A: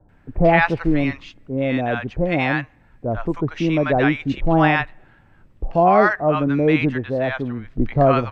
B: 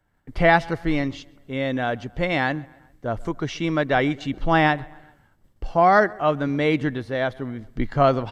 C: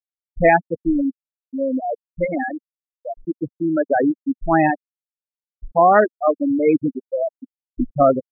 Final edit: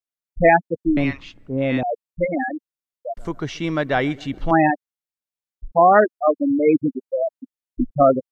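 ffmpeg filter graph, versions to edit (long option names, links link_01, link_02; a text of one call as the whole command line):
ffmpeg -i take0.wav -i take1.wav -i take2.wav -filter_complex "[2:a]asplit=3[link_01][link_02][link_03];[link_01]atrim=end=0.972[link_04];[0:a]atrim=start=0.968:end=1.832[link_05];[link_02]atrim=start=1.828:end=3.172[link_06];[1:a]atrim=start=3.168:end=4.512[link_07];[link_03]atrim=start=4.508[link_08];[link_04][link_05]acrossfade=duration=0.004:curve1=hsin:curve2=hsin[link_09];[link_09][link_06]acrossfade=duration=0.004:curve1=hsin:curve2=hsin[link_10];[link_10][link_07]acrossfade=duration=0.004:curve1=hsin:curve2=hsin[link_11];[link_11][link_08]acrossfade=duration=0.004:curve1=hsin:curve2=hsin" out.wav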